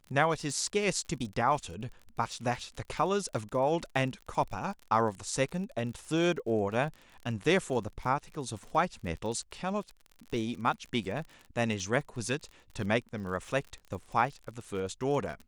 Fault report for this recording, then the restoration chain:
surface crackle 37 per second −39 dBFS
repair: click removal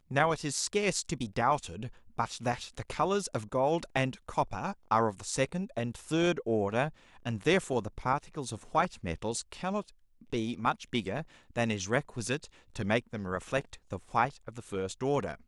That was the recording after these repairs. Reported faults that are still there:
none of them is left

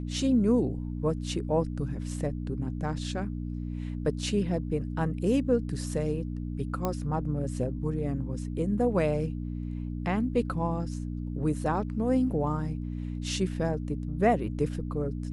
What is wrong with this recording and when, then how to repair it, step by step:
mains hum 60 Hz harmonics 5 −34 dBFS
0:06.85: click −15 dBFS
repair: click removal
hum removal 60 Hz, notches 5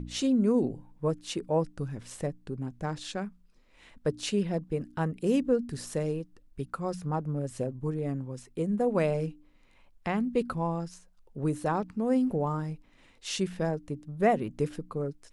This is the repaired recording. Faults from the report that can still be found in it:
none of them is left

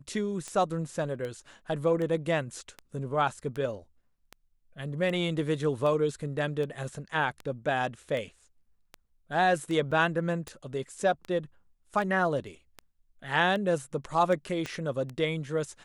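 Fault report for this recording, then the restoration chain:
scratch tick 78 rpm −24 dBFS
0:09.91–0:09.92: drop-out 5.9 ms
0:14.66: click −21 dBFS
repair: click removal
repair the gap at 0:09.91, 5.9 ms

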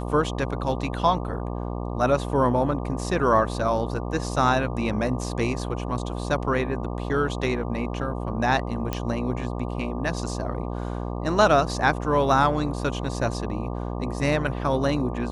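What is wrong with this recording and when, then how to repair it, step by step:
mains buzz 60 Hz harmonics 20 −30 dBFS
0:08.93: click −12 dBFS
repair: click removal
hum removal 60 Hz, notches 20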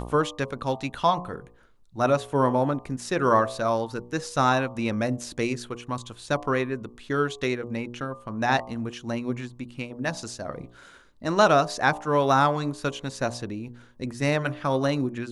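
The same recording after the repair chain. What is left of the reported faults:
none of them is left

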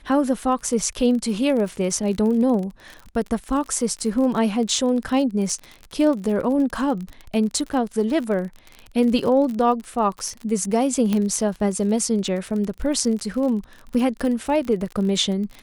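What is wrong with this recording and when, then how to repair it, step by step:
surface crackle 40 per second −28 dBFS
0:11.13: click −10 dBFS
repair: click removal

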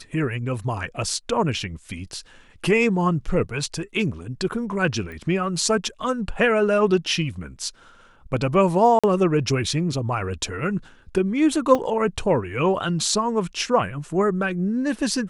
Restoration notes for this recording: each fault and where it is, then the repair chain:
0:05.12: click −26 dBFS
0:08.99–0:09.04: drop-out 46 ms
0:11.75: drop-out 2.2 ms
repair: click removal
repair the gap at 0:08.99, 46 ms
repair the gap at 0:11.75, 2.2 ms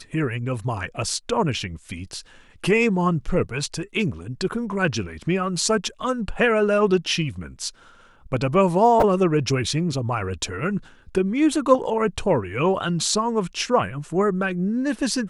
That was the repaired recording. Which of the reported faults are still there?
none of them is left

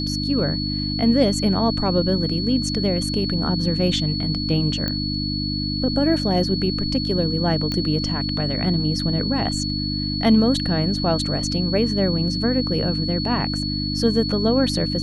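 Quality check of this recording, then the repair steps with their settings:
mains hum 50 Hz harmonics 6 −26 dBFS
whistle 4,400 Hz −27 dBFS
0:04.88: click −11 dBFS
0:07.72: click −12 dBFS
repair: click removal
notch filter 4,400 Hz, Q 30
hum removal 50 Hz, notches 6

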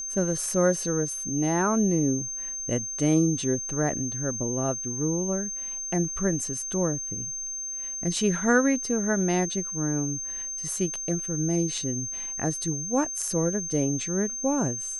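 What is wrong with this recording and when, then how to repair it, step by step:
whistle 6,300 Hz −31 dBFS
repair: notch filter 6,300 Hz, Q 30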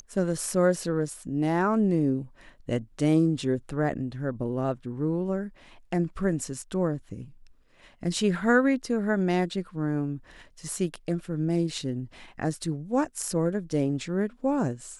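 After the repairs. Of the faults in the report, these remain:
none of them is left

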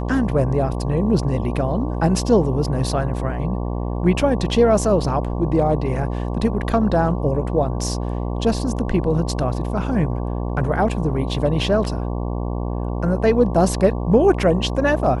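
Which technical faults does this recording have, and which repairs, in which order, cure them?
mains buzz 60 Hz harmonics 19 −24 dBFS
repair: hum removal 60 Hz, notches 19

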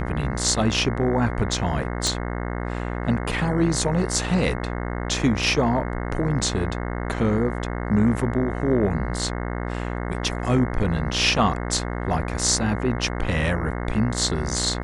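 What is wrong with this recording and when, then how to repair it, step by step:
mains buzz 60 Hz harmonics 36 −28 dBFS
0:02.07: click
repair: click removal
hum removal 60 Hz, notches 36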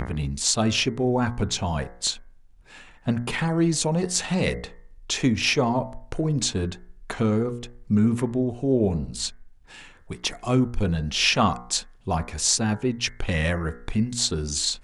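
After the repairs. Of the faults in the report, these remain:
0:02.07: click

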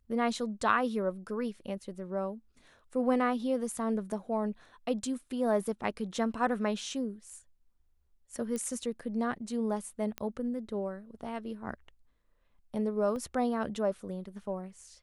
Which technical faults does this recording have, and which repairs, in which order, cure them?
0:08.56: click −23 dBFS
0:10.18: click −20 dBFS
0:13.16: drop-out 2 ms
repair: click removal
repair the gap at 0:13.16, 2 ms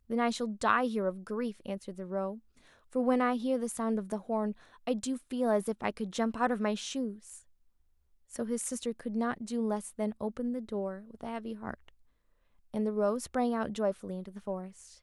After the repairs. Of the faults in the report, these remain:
none of them is left

